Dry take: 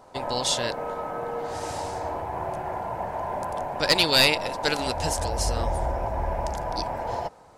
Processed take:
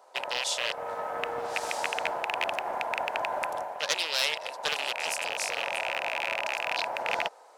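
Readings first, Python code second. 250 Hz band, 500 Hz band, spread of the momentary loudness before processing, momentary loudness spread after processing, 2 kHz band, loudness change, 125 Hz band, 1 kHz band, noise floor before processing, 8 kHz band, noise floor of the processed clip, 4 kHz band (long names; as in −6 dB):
−16.0 dB, −6.0 dB, 12 LU, 5 LU, +0.5 dB, −4.0 dB, −25.5 dB, −3.5 dB, −50 dBFS, −3.5 dB, −53 dBFS, −5.0 dB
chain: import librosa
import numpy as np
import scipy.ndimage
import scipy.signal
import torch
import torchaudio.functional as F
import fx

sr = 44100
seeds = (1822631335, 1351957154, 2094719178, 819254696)

y = fx.rattle_buzz(x, sr, strikes_db=-35.0, level_db=-12.0)
y = scipy.signal.sosfilt(scipy.signal.butter(4, 450.0, 'highpass', fs=sr, output='sos'), y)
y = fx.high_shelf(y, sr, hz=5300.0, db=4.0)
y = fx.rider(y, sr, range_db=5, speed_s=0.5)
y = fx.doppler_dist(y, sr, depth_ms=0.21)
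y = y * 10.0 ** (-6.0 / 20.0)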